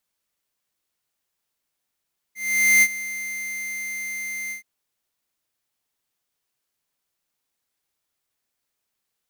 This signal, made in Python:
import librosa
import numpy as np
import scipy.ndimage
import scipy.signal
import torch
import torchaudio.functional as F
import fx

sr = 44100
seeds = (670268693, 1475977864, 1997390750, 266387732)

y = fx.adsr_tone(sr, wave='square', hz=2090.0, attack_ms=472.0, decay_ms=52.0, sustain_db=-16.5, held_s=2.16, release_ms=115.0, level_db=-14.0)